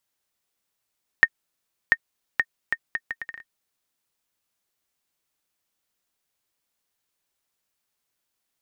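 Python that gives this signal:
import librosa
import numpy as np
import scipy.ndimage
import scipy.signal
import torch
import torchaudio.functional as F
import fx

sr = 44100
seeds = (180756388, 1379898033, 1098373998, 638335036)

y = fx.bouncing_ball(sr, first_gap_s=0.69, ratio=0.69, hz=1840.0, decay_ms=52.0, level_db=-2.0)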